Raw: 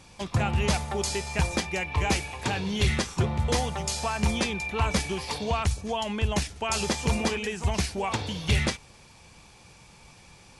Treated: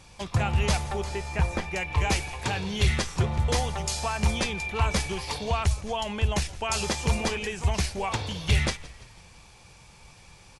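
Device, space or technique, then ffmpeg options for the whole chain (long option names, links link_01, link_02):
low shelf boost with a cut just above: -filter_complex "[0:a]asettb=1/sr,asplit=3[link_01][link_02][link_03];[link_01]atrim=end=0.964[link_04];[link_02]atrim=start=0.96:end=1.76,asetpts=PTS-STARTPTS,afade=type=in:duration=0.004:curve=qsin,afade=type=out:start_time=0.796:duration=0.004:curve=qsin,acrossover=split=2500[link_05][link_06];[link_06]acompressor=threshold=-44dB:ratio=4:attack=1:release=60[link_07];[link_05][link_07]amix=inputs=2:normalize=0[link_08];[link_03]atrim=start=1.756[link_09];[link_04][link_08]acrossfade=duration=0.004:curve1=hsin:curve2=qsin[link_10];[link_10][link_09]acrossfade=duration=0.004:curve1=qsin:curve2=hsin,asplit=5[link_11][link_12][link_13][link_14][link_15];[link_12]adelay=168,afreqshift=-62,volume=-20dB[link_16];[link_13]adelay=336,afreqshift=-124,volume=-25.8dB[link_17];[link_14]adelay=504,afreqshift=-186,volume=-31.7dB[link_18];[link_15]adelay=672,afreqshift=-248,volume=-37.5dB[link_19];[link_11][link_16][link_17][link_18][link_19]amix=inputs=5:normalize=0,lowshelf=frequency=66:gain=5.5,equalizer=frequency=250:width_type=o:width=1.1:gain=-4.5"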